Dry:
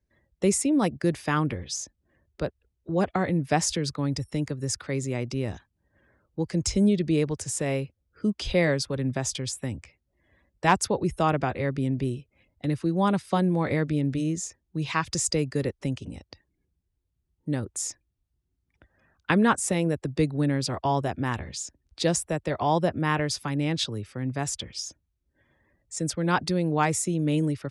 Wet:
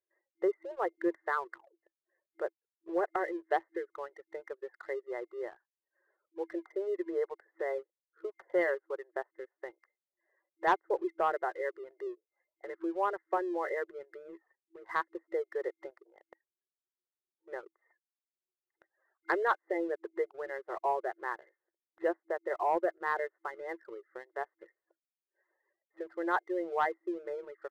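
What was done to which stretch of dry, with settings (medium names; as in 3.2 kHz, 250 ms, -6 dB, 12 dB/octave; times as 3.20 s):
1.37 s: tape stop 0.46 s
whole clip: reverb removal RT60 0.76 s; FFT band-pass 330–2100 Hz; waveshaping leveller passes 1; trim -7.5 dB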